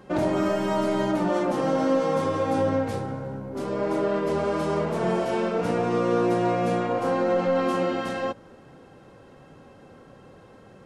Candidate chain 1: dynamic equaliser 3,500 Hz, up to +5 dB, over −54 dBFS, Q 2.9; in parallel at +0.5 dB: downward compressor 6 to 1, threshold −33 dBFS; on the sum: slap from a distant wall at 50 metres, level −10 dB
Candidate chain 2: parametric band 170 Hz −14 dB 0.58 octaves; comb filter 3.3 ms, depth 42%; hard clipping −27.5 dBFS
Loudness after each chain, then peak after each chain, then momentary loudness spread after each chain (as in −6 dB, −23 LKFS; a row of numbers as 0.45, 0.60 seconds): −22.5, −30.0 LKFS; −9.5, −27.5 dBFS; 6, 4 LU